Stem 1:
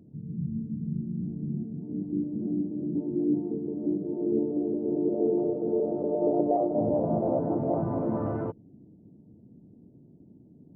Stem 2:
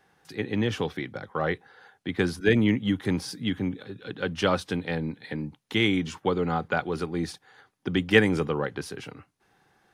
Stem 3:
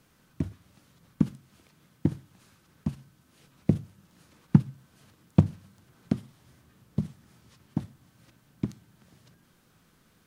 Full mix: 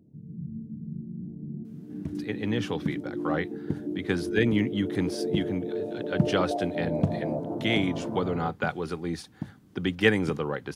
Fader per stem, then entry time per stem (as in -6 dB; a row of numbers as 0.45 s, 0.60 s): -5.0 dB, -2.5 dB, -6.0 dB; 0.00 s, 1.90 s, 1.65 s